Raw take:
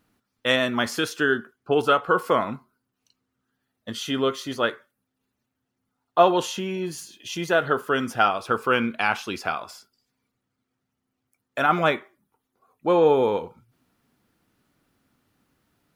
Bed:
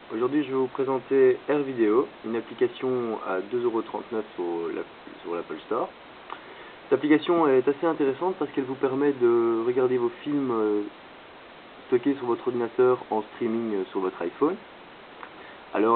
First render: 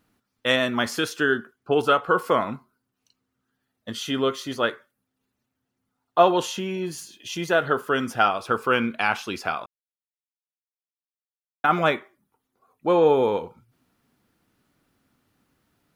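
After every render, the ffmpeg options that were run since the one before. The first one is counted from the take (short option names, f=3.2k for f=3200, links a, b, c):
-filter_complex "[0:a]asplit=3[a][b][c];[a]atrim=end=9.66,asetpts=PTS-STARTPTS,afade=t=out:st=9.656:d=0.004:c=hsin[d];[b]atrim=start=9.66:end=11.64,asetpts=PTS-STARTPTS,volume=0[e];[c]atrim=start=11.64,asetpts=PTS-STARTPTS,afade=t=in:d=0.004:c=hsin[f];[d][e][f]concat=n=3:v=0:a=1"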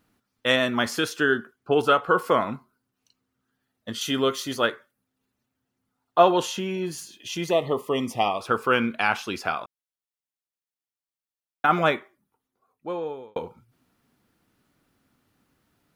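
-filter_complex "[0:a]asettb=1/sr,asplit=3[a][b][c];[a]atrim=end=4.014[d];[b]atrim=start=4.01:end=4.67,asetpts=PTS-STARTPTS,afade=t=in:d=0.004:c=qsin,afade=t=out:st=0.656:d=0.004:c=qsin,highshelf=f=5k:g=8[e];[c]atrim=start=4.666[f];[d][e]acrossfade=d=0.004:c1=hsin:c2=qsin[g];[g][f]acrossfade=d=0.004:c1=qsin:c2=hsin,asettb=1/sr,asplit=3[h][i][j];[h]atrim=end=7.504[k];[i]atrim=start=7.5:end=8.41,asetpts=PTS-STARTPTS,afade=t=in:d=0.004:c=qsin,afade=t=out:st=0.906:d=0.004:c=qsin,asuperstop=centerf=1500:order=8:qfactor=2.1[l];[j]atrim=start=8.406[m];[k][l]acrossfade=d=0.004:c1=hsin:c2=qsin[n];[n][m]acrossfade=d=0.004:c1=qsin:c2=hsin,asplit=2[o][p];[o]atrim=end=13.36,asetpts=PTS-STARTPTS,afade=t=out:st=11.81:d=1.55[q];[p]atrim=start=13.36,asetpts=PTS-STARTPTS,afade=t=in:d=0.004:c=hsin[r];[q][r]concat=n=2:v=0:a=1"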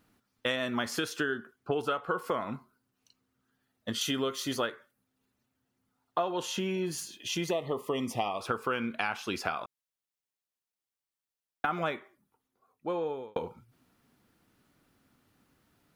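-af "acompressor=threshold=-28dB:ratio=6"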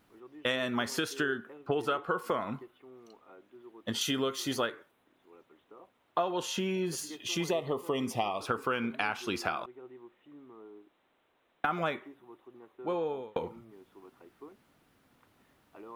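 -filter_complex "[1:a]volume=-26.5dB[a];[0:a][a]amix=inputs=2:normalize=0"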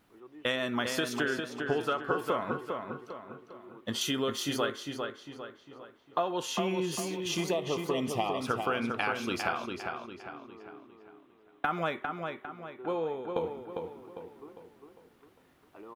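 -filter_complex "[0:a]asplit=2[a][b];[b]adelay=402,lowpass=f=4.5k:p=1,volume=-5dB,asplit=2[c][d];[d]adelay=402,lowpass=f=4.5k:p=1,volume=0.44,asplit=2[e][f];[f]adelay=402,lowpass=f=4.5k:p=1,volume=0.44,asplit=2[g][h];[h]adelay=402,lowpass=f=4.5k:p=1,volume=0.44,asplit=2[i][j];[j]adelay=402,lowpass=f=4.5k:p=1,volume=0.44[k];[a][c][e][g][i][k]amix=inputs=6:normalize=0"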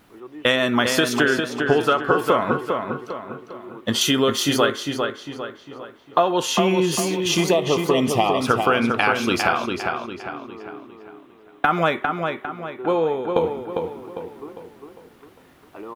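-af "volume=12dB,alimiter=limit=-3dB:level=0:latency=1"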